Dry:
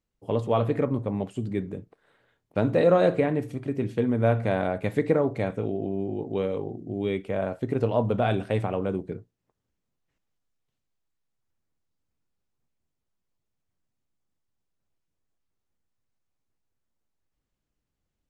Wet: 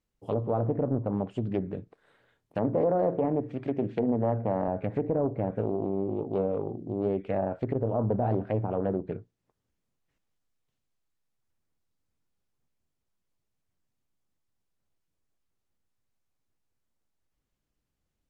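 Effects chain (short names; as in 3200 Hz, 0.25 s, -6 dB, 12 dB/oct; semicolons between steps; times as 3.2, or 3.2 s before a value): 2.58–4.68 HPF 130 Hz 12 dB/oct; treble ducked by the level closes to 690 Hz, closed at -22 dBFS; limiter -17 dBFS, peak gain reduction 7 dB; Doppler distortion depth 0.44 ms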